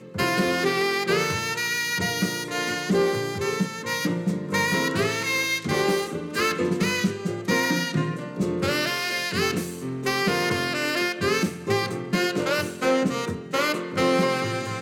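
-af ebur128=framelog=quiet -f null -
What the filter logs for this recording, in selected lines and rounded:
Integrated loudness:
  I:         -24.3 LUFS
  Threshold: -34.2 LUFS
Loudness range:
  LRA:         1.0 LU
  Threshold: -44.4 LUFS
  LRA low:   -24.9 LUFS
  LRA high:  -23.9 LUFS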